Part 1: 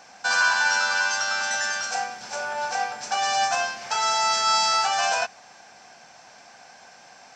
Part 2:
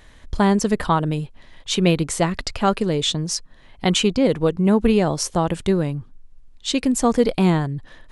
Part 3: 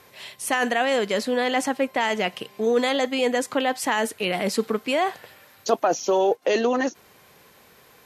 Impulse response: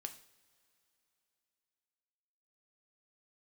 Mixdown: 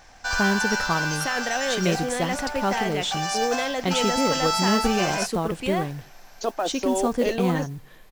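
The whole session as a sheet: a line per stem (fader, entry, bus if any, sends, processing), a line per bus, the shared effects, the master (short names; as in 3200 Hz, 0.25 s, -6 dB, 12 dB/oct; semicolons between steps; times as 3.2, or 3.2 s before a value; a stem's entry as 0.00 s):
-4.0 dB, 0.00 s, no send, dry
-9.0 dB, 0.00 s, send -6.5 dB, dry
-5.5 dB, 0.75 s, no send, dry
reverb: on, pre-delay 3 ms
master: modulation noise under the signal 27 dB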